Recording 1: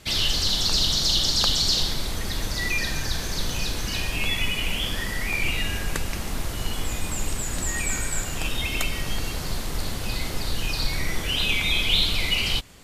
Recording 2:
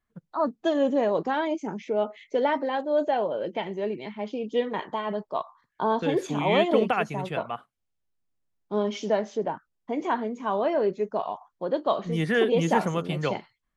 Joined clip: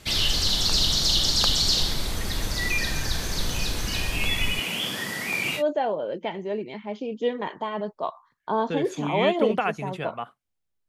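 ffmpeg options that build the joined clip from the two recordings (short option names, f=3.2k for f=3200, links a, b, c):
-filter_complex "[0:a]asettb=1/sr,asplit=3[a][b][c];[a]atrim=end=4.594[d];[b]atrim=start=4.59:end=5.63,asetpts=PTS-STARTPTS,afade=t=in:d=0.004:c=qsin,afade=t=out:st=1.036:d=0.004:c=qsin,highpass=f=140:w=0.5412,highpass=f=140:w=1.3066[e];[c]atrim=start=5.626[f];[d][e]acrossfade=d=0.004:c1=hsin:c2=qsin[g];[g][f]acrossfade=d=0.004:c1=qsin:c2=hsin,apad=whole_dur=10.88,atrim=end=10.88,atrim=end=5.63,asetpts=PTS-STARTPTS[h];[1:a]atrim=start=2.87:end=8.2,asetpts=PTS-STARTPTS[i];[h][i]acrossfade=d=0.08:c1=tri:c2=tri"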